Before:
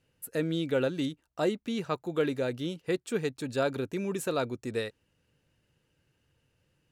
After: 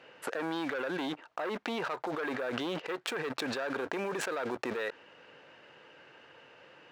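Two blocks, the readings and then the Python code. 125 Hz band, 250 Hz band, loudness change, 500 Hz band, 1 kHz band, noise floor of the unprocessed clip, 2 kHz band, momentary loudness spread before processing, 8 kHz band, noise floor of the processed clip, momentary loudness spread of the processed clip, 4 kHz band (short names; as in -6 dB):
-12.0 dB, -5.0 dB, -3.5 dB, -5.0 dB, +2.0 dB, -75 dBFS, +3.0 dB, 6 LU, -2.5 dB, -57 dBFS, 21 LU, 0.0 dB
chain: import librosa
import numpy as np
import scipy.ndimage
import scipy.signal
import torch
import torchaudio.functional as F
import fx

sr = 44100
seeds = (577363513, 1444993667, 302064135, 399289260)

y = fx.spacing_loss(x, sr, db_at_10k=37)
y = fx.leveller(y, sr, passes=2)
y = fx.dynamic_eq(y, sr, hz=1600.0, q=4.1, threshold_db=-52.0, ratio=4.0, max_db=6)
y = scipy.signal.sosfilt(scipy.signal.butter(2, 690.0, 'highpass', fs=sr, output='sos'), y)
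y = fx.env_flatten(y, sr, amount_pct=100)
y = y * 10.0 ** (-6.0 / 20.0)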